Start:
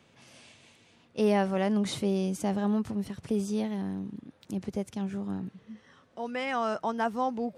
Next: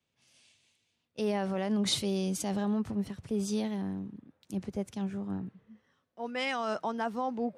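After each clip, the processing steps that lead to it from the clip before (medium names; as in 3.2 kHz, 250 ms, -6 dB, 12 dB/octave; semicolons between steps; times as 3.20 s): dynamic bell 4.2 kHz, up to +4 dB, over -52 dBFS, Q 1.6; peak limiter -23.5 dBFS, peak gain reduction 8.5 dB; three bands expanded up and down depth 70%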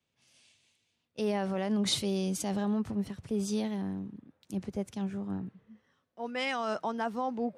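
no audible change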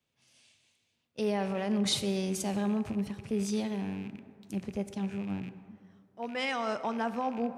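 rattle on loud lows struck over -43 dBFS, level -39 dBFS; plate-style reverb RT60 2.2 s, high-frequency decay 0.45×, DRR 11 dB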